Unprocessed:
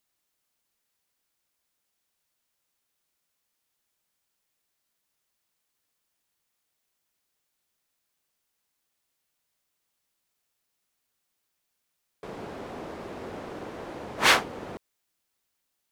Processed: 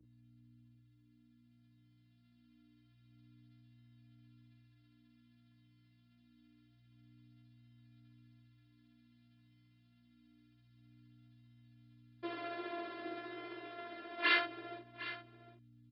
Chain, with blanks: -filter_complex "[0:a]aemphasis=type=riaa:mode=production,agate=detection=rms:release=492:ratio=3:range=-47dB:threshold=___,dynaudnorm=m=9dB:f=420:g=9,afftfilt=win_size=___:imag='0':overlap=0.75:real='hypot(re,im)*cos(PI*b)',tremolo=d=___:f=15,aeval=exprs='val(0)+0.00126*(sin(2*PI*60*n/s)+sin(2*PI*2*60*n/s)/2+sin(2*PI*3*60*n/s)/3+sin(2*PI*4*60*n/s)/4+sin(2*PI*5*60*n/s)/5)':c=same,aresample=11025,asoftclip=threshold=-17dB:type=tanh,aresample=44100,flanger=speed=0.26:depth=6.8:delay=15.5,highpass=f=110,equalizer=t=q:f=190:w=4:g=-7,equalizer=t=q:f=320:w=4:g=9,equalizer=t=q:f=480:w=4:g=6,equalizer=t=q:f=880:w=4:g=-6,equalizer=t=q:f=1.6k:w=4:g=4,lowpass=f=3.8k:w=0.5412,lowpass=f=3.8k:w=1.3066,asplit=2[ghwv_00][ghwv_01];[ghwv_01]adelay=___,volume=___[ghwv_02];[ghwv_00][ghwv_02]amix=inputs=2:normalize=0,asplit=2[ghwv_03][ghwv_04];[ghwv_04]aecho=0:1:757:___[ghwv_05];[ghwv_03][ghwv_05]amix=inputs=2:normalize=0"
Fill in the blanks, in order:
-54dB, 512, 0.57, 42, -3.5dB, 0.2